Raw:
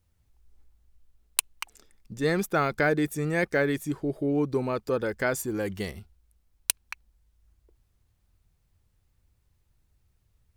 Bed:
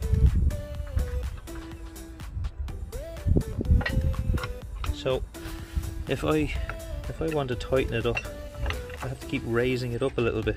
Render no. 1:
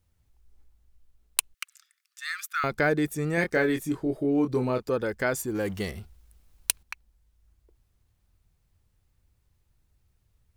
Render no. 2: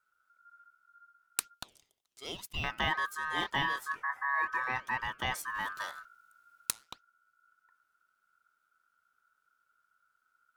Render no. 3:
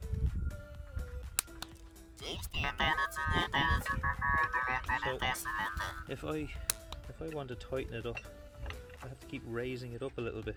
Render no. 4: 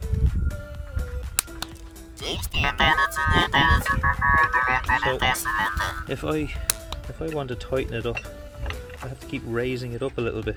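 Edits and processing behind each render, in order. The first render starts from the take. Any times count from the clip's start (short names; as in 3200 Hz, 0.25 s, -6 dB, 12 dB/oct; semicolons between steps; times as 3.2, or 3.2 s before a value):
1.54–2.64 steep high-pass 1200 Hz 72 dB/oct; 3.35–4.83 doubler 24 ms -6 dB; 5.55–6.83 G.711 law mismatch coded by mu
flange 2 Hz, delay 1.9 ms, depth 7.6 ms, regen +89%; ring modulator 1400 Hz
add bed -13 dB
gain +12 dB; limiter -1 dBFS, peak gain reduction 2.5 dB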